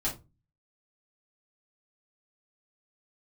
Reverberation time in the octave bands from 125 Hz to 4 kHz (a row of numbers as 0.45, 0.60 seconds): 0.60, 0.40, 0.30, 0.25, 0.20, 0.20 seconds